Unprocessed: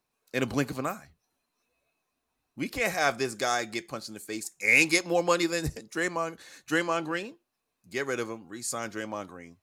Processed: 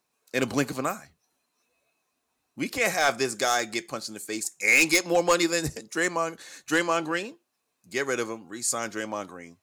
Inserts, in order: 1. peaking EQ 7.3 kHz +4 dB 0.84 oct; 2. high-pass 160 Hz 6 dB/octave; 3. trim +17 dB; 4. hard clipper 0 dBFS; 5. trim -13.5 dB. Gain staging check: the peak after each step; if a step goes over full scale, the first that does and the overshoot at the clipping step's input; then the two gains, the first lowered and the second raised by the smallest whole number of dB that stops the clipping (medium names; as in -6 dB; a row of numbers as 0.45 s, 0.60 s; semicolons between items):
-8.5 dBFS, -8.0 dBFS, +9.0 dBFS, 0.0 dBFS, -13.5 dBFS; step 3, 9.0 dB; step 3 +8 dB, step 5 -4.5 dB